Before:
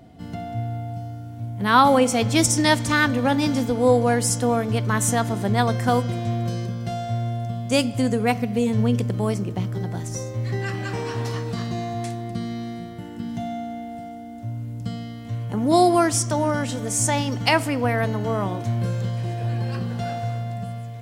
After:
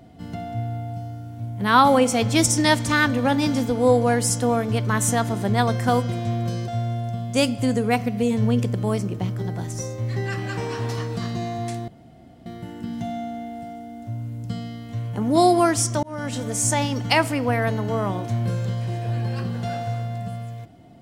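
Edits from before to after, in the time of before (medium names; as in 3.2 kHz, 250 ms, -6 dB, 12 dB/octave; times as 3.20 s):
6.68–7.04 s: delete
12.24–12.82 s: room tone
16.39–16.73 s: fade in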